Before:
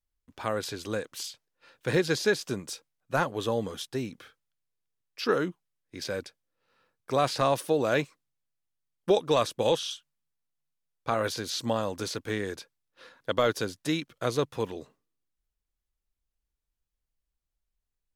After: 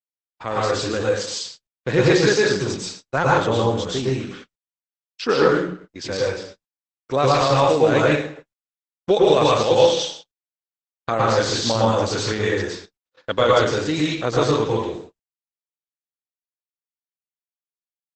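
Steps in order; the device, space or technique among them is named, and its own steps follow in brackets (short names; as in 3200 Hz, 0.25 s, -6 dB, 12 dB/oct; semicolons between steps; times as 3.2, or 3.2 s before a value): speakerphone in a meeting room (reverb RT60 0.60 s, pre-delay 0.104 s, DRR -5 dB; AGC gain up to 6 dB; gate -38 dBFS, range -59 dB; Opus 12 kbps 48000 Hz)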